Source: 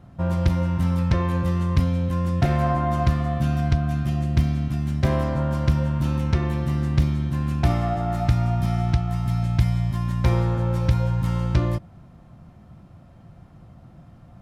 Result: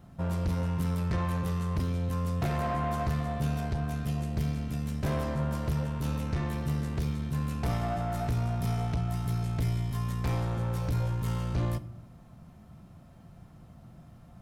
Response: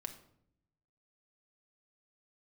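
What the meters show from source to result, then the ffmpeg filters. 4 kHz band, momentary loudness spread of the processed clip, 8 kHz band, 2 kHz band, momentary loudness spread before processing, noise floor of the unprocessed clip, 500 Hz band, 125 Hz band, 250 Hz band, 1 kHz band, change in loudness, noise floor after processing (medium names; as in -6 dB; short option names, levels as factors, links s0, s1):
-6.5 dB, 2 LU, no reading, -6.5 dB, 3 LU, -48 dBFS, -7.5 dB, -8.5 dB, -8.0 dB, -7.0 dB, -8.5 dB, -53 dBFS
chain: -filter_complex "[0:a]asoftclip=type=tanh:threshold=0.1,crystalizer=i=1.5:c=0,asplit=2[s0][s1];[1:a]atrim=start_sample=2205[s2];[s1][s2]afir=irnorm=-1:irlink=0,volume=1[s3];[s0][s3]amix=inputs=2:normalize=0,volume=0.355"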